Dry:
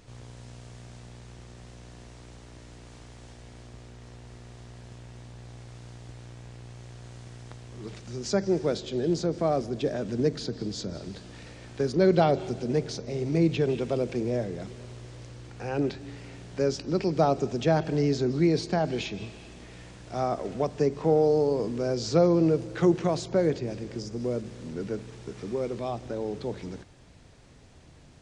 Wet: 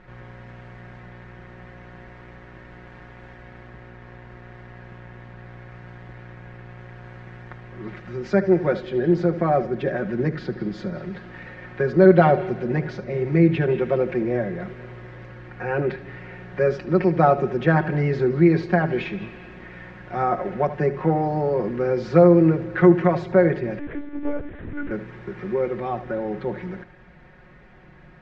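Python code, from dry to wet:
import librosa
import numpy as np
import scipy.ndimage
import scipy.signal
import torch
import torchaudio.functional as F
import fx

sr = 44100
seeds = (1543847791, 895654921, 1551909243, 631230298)

y = fx.lowpass_res(x, sr, hz=1800.0, q=2.6)
y = y + 0.86 * np.pad(y, (int(5.5 * sr / 1000.0), 0))[:len(y)]
y = y + 10.0 ** (-15.0 / 20.0) * np.pad(y, (int(74 * sr / 1000.0), 0))[:len(y)]
y = fx.lpc_monotone(y, sr, seeds[0], pitch_hz=290.0, order=10, at=(23.79, 24.91))
y = y * librosa.db_to_amplitude(2.5)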